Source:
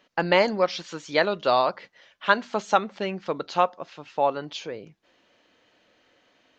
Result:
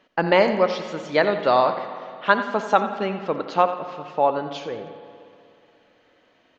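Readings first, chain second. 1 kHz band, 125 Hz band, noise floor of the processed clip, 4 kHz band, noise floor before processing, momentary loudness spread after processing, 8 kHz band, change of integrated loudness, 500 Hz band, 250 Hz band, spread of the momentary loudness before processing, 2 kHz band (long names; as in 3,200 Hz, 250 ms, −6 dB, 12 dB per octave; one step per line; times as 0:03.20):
+3.5 dB, +3.5 dB, −61 dBFS, −1.0 dB, −65 dBFS, 13 LU, can't be measured, +3.0 dB, +4.0 dB, +4.0 dB, 14 LU, +2.0 dB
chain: high-shelf EQ 3,200 Hz −9.5 dB
repeating echo 88 ms, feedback 36%, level −12.5 dB
spring reverb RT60 2.5 s, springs 54/60 ms, chirp 25 ms, DRR 10.5 dB
level +3.5 dB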